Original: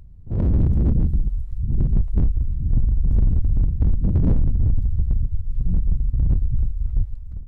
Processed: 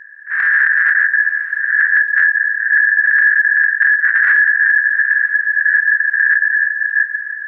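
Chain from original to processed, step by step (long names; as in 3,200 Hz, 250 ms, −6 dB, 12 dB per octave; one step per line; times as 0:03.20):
turntable brake at the end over 0.44 s
ring modulation 1,700 Hz
feedback delay with all-pass diffusion 908 ms, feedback 41%, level −14 dB
level +6.5 dB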